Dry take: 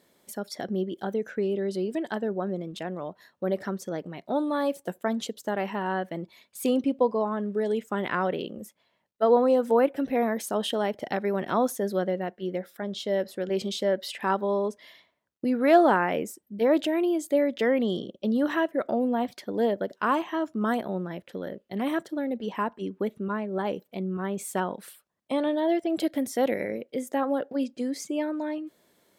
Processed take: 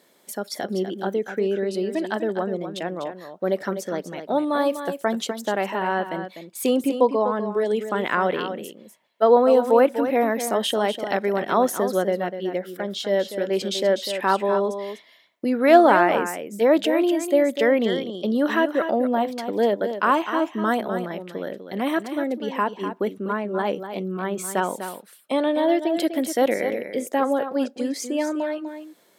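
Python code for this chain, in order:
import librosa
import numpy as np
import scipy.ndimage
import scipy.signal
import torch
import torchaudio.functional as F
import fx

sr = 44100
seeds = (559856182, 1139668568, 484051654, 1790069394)

p1 = scipy.signal.sosfilt(scipy.signal.butter(2, 110.0, 'highpass', fs=sr, output='sos'), x)
p2 = fx.low_shelf(p1, sr, hz=160.0, db=-11.5)
p3 = p2 + fx.echo_single(p2, sr, ms=248, db=-9.5, dry=0)
y = p3 * 10.0 ** (6.0 / 20.0)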